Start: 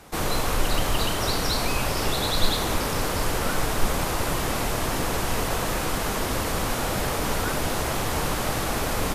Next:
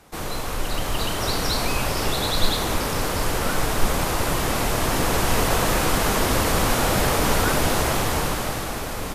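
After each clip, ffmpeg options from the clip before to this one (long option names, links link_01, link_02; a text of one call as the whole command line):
ffmpeg -i in.wav -af "dynaudnorm=framelen=130:gausssize=17:maxgain=11.5dB,volume=-4dB" out.wav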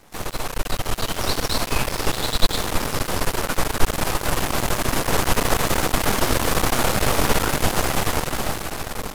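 ffmpeg -i in.wav -af "aeval=exprs='max(val(0),0)':channel_layout=same,volume=4dB" out.wav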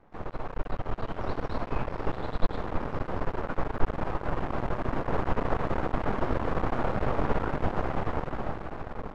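ffmpeg -i in.wav -af "lowpass=1300,volume=-6.5dB" out.wav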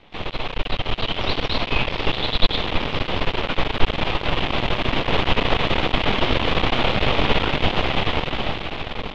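ffmpeg -i in.wav -af "aexciter=amount=2.1:drive=9.9:freq=2200,lowpass=frequency=3400:width_type=q:width=2.9,volume=7dB" out.wav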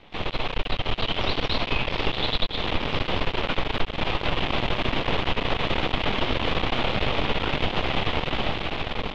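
ffmpeg -i in.wav -af "acompressor=threshold=-18dB:ratio=10" out.wav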